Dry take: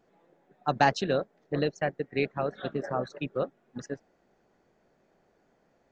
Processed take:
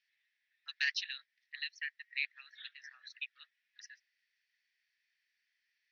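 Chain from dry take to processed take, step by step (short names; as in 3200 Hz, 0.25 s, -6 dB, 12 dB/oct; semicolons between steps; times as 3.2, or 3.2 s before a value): Chebyshev band-pass 1800–5700 Hz, order 4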